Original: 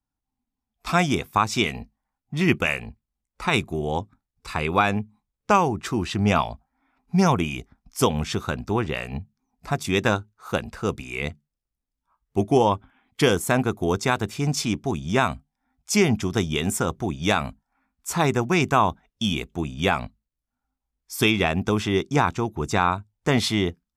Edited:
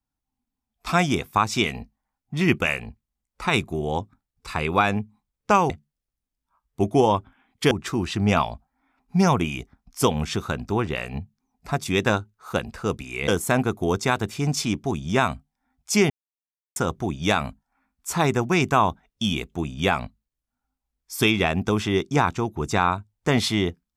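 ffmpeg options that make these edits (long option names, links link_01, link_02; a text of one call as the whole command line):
ffmpeg -i in.wav -filter_complex "[0:a]asplit=6[link_01][link_02][link_03][link_04][link_05][link_06];[link_01]atrim=end=5.702[link_07];[link_02]atrim=start=11.268:end=13.282[link_08];[link_03]atrim=start=5.698:end=11.272[link_09];[link_04]atrim=start=13.278:end=16.1,asetpts=PTS-STARTPTS,afade=type=out:start_time=2.818:duration=0.004:curve=hsin[link_10];[link_05]atrim=start=16.1:end=16.76,asetpts=PTS-STARTPTS,volume=0[link_11];[link_06]atrim=start=16.76,asetpts=PTS-STARTPTS,afade=type=in:duration=0.004:curve=hsin[link_12];[link_07][link_08]acrossfade=duration=0.004:curve1=hsin:curve2=hsin[link_13];[link_13][link_09]acrossfade=duration=0.004:curve1=hsin:curve2=hsin[link_14];[link_10][link_11][link_12]concat=n=3:v=0:a=1[link_15];[link_14][link_15]acrossfade=duration=0.004:curve1=hsin:curve2=hsin" out.wav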